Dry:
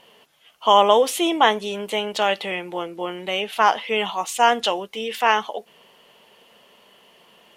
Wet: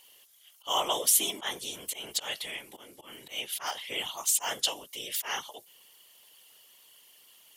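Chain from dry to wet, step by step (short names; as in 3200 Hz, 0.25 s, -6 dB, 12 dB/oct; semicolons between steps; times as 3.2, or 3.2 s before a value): auto swell 0.125 s; pre-emphasis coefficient 0.9; notch 2600 Hz, Q 12; whisperiser; high shelf 4300 Hz +7.5 dB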